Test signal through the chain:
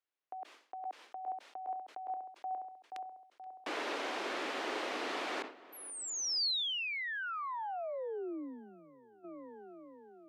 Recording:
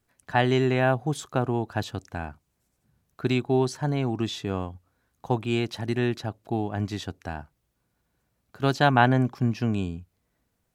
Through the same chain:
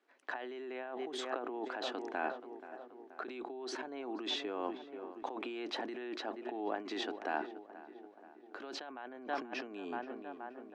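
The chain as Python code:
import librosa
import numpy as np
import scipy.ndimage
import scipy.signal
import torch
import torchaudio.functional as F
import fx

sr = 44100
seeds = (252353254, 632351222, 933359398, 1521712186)

p1 = scipy.signal.sosfilt(scipy.signal.butter(2, 3100.0, 'lowpass', fs=sr, output='sos'), x)
p2 = p1 + fx.echo_filtered(p1, sr, ms=478, feedback_pct=58, hz=2400.0, wet_db=-19.0, dry=0)
p3 = fx.over_compress(p2, sr, threshold_db=-33.0, ratio=-1.0)
p4 = scipy.signal.sosfilt(scipy.signal.butter(6, 290.0, 'highpass', fs=sr, output='sos'), p3)
p5 = fx.sustainer(p4, sr, db_per_s=130.0)
y = p5 * 10.0 ** (-4.0 / 20.0)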